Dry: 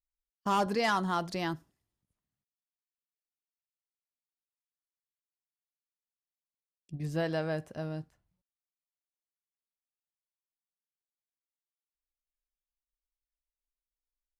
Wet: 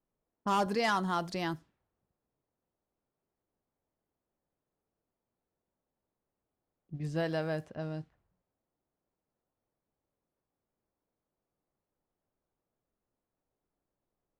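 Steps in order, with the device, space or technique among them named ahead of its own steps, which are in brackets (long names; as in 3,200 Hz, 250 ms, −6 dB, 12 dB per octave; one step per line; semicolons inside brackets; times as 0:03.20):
cassette deck with a dynamic noise filter (white noise bed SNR 33 dB; low-pass that shuts in the quiet parts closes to 600 Hz, open at −30 dBFS)
level −1 dB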